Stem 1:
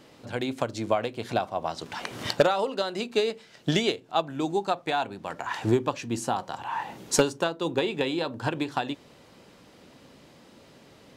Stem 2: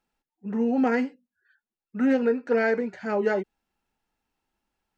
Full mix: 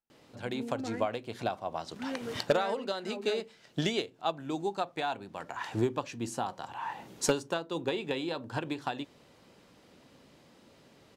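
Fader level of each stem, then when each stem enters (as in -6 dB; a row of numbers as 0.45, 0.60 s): -6.0, -16.5 dB; 0.10, 0.00 s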